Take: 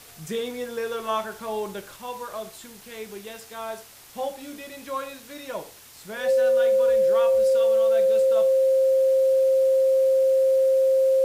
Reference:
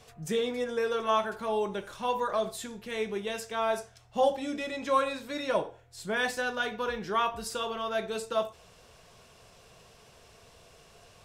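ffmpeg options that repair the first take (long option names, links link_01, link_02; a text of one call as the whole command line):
ffmpeg -i in.wav -af "bandreject=frequency=530:width=30,afwtdn=0.0045,asetnsamples=nb_out_samples=441:pad=0,asendcmd='1.96 volume volume 5dB',volume=0dB" out.wav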